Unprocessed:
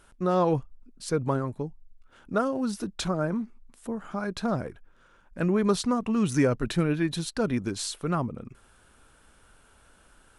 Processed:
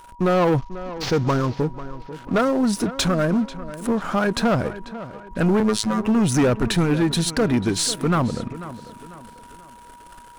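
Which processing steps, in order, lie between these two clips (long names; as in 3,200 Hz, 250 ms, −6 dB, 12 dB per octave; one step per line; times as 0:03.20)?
0:00.58–0:01.57: variable-slope delta modulation 32 kbit/s
0:03.90–0:04.55: parametric band 830 Hz +4 dB 2.5 octaves
in parallel at +0.5 dB: downward compressor, threshold −39 dBFS, peak gain reduction 19 dB
on the sum: leveller curve on the samples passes 3
0:05.60–0:06.07: phases set to zero 108 Hz
on a send: tape delay 493 ms, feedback 46%, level −13.5 dB, low-pass 3,100 Hz
on the sum: steady tone 960 Hz −41 dBFS
level −2.5 dB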